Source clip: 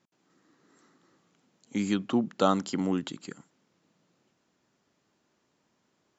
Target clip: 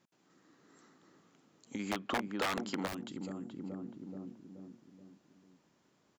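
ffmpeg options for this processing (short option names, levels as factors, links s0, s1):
-filter_complex "[0:a]asplit=2[s0][s1];[s1]adelay=428,lowpass=f=870:p=1,volume=0.562,asplit=2[s2][s3];[s3]adelay=428,lowpass=f=870:p=1,volume=0.51,asplit=2[s4][s5];[s5]adelay=428,lowpass=f=870:p=1,volume=0.51,asplit=2[s6][s7];[s7]adelay=428,lowpass=f=870:p=1,volume=0.51,asplit=2[s8][s9];[s9]adelay=428,lowpass=f=870:p=1,volume=0.51,asplit=2[s10][s11];[s11]adelay=428,lowpass=f=870:p=1,volume=0.51[s12];[s2][s4][s6][s8][s10][s12]amix=inputs=6:normalize=0[s13];[s0][s13]amix=inputs=2:normalize=0,aeval=exprs='(mod(7.94*val(0)+1,2)-1)/7.94':c=same,acompressor=threshold=0.0126:ratio=10,asplit=3[s14][s15][s16];[s14]afade=t=out:st=1.78:d=0.02[s17];[s15]asplit=2[s18][s19];[s19]highpass=f=720:p=1,volume=7.94,asoftclip=type=tanh:threshold=0.266[s20];[s18][s20]amix=inputs=2:normalize=0,lowpass=f=1900:p=1,volume=0.501,afade=t=in:st=1.78:d=0.02,afade=t=out:st=2.86:d=0.02[s21];[s16]afade=t=in:st=2.86:d=0.02[s22];[s17][s21][s22]amix=inputs=3:normalize=0"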